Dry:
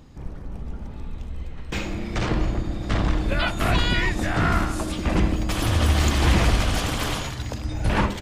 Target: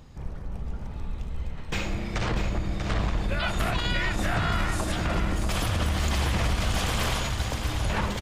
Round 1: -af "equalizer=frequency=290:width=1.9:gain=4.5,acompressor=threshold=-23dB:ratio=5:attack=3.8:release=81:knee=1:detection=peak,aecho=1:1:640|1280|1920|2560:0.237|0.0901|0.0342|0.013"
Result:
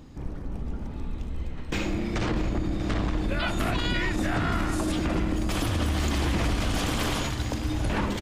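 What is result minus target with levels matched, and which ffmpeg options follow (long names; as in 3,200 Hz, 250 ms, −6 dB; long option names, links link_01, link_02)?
250 Hz band +4.5 dB; echo-to-direct −6 dB
-af "equalizer=frequency=290:width=1.9:gain=-6.5,acompressor=threshold=-23dB:ratio=5:attack=3.8:release=81:knee=1:detection=peak,aecho=1:1:640|1280|1920|2560:0.473|0.18|0.0683|0.026"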